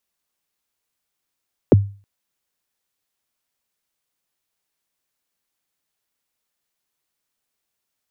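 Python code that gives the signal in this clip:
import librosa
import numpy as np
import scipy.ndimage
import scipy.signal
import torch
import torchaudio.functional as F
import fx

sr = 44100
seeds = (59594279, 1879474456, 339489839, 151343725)

y = fx.drum_kick(sr, seeds[0], length_s=0.32, level_db=-4.0, start_hz=570.0, end_hz=100.0, sweep_ms=22.0, decay_s=0.37, click=False)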